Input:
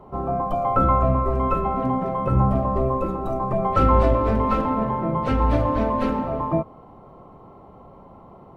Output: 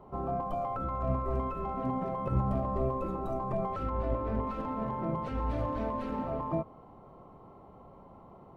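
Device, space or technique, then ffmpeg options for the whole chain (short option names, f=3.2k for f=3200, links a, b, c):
de-esser from a sidechain: -filter_complex "[0:a]asplit=2[a][b];[b]highpass=4k,apad=whole_len=377554[c];[a][c]sidechaincompress=threshold=-50dB:ratio=4:attack=0.81:release=84,asettb=1/sr,asplit=3[d][e][f];[d]atrim=end=3.904[g];[e]atrim=start=3.9:end=4.47,asetpts=PTS-STARTPTS,afade=t=in:d=0.004:c=qsin,afade=t=out:st=0.566:d=0.004:c=qsin,aemphasis=mode=reproduction:type=75kf[h];[f]atrim=start=4.466[i];[g][h]acrossfade=d=0.004:c1=hsin:c2=qsin[j];[j][i]acrossfade=d=0.004:c1=qsin:c2=hsin,volume=-7dB"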